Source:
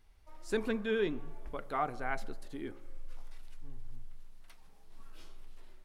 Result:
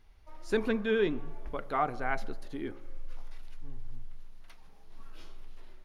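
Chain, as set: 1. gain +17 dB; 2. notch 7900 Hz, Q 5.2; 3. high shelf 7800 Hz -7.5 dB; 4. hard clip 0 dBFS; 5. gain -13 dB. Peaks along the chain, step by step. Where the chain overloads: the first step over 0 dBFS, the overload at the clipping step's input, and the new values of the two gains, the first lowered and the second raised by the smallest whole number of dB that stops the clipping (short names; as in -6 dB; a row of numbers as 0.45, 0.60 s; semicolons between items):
-3.0, -3.0, -3.0, -3.0, -16.0 dBFS; no overload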